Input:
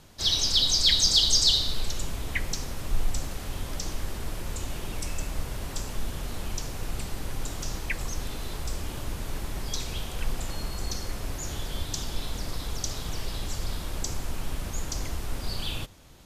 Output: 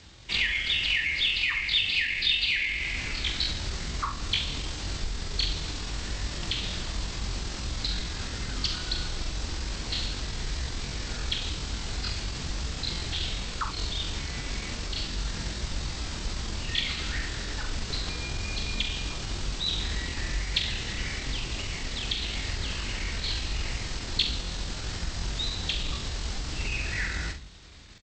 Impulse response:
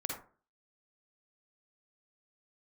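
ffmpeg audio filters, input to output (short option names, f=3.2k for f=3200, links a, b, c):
-af "highpass=46,bandreject=f=60:t=h:w=6,bandreject=f=120:t=h:w=6,bandreject=f=180:t=h:w=6,bandreject=f=240:t=h:w=6,bandreject=f=300:t=h:w=6,bandreject=f=360:t=h:w=6,bandreject=f=420:t=h:w=6,bandreject=f=480:t=h:w=6,adynamicequalizer=threshold=0.00282:dfrequency=100:dqfactor=3.8:tfrequency=100:tqfactor=3.8:attack=5:release=100:ratio=0.375:range=2:mode=boostabove:tftype=bell,acompressor=threshold=-28dB:ratio=20,atempo=0.58,aeval=exprs='0.112*(cos(1*acos(clip(val(0)/0.112,-1,1)))-cos(1*PI/2))+0.000708*(cos(6*acos(clip(val(0)/0.112,-1,1)))-cos(6*PI/2))':c=same,equalizer=f=125:t=o:w=1:g=4,equalizer=f=1k:t=o:w=1:g=-4,equalizer=f=8k:t=o:w=1:g=8,asetrate=24750,aresample=44100,atempo=1.7818,aecho=1:1:43|67:0.376|0.224,volume=2.5dB"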